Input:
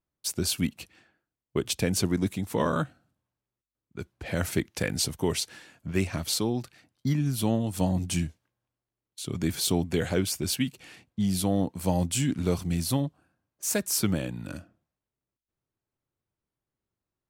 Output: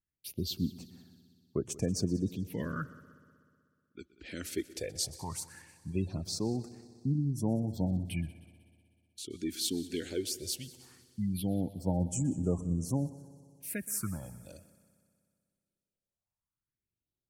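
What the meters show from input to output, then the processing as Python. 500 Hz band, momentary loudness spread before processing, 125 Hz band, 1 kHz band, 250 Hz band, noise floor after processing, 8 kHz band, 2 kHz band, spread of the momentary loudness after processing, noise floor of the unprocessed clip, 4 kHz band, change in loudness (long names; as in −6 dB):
−8.0 dB, 12 LU, −5.0 dB, −11.0 dB, −6.0 dB, below −85 dBFS, −8.0 dB, −11.5 dB, 16 LU, below −85 dBFS, −8.0 dB, −6.5 dB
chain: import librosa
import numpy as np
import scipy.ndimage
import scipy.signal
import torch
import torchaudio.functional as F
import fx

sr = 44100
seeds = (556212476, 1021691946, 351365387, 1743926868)

y = fx.phaser_stages(x, sr, stages=4, low_hz=120.0, high_hz=4000.0, hz=0.18, feedback_pct=45)
y = fx.spec_gate(y, sr, threshold_db=-30, keep='strong')
y = fx.echo_heads(y, sr, ms=62, heads='second and third', feedback_pct=60, wet_db=-20.0)
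y = F.gain(torch.from_numpy(y), -7.0).numpy()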